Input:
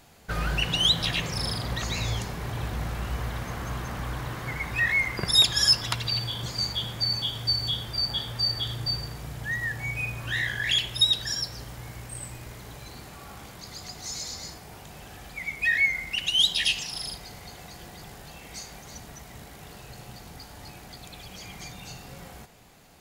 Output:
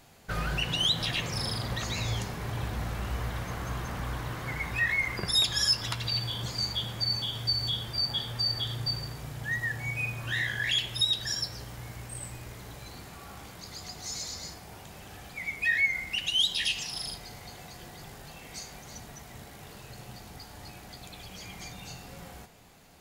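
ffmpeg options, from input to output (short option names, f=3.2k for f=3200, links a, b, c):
-filter_complex "[0:a]asplit=2[a][b];[b]alimiter=limit=-19.5dB:level=0:latency=1:release=123,volume=1dB[c];[a][c]amix=inputs=2:normalize=0,flanger=delay=7.6:depth=3.9:regen=-64:speed=0.11:shape=triangular,volume=-4dB"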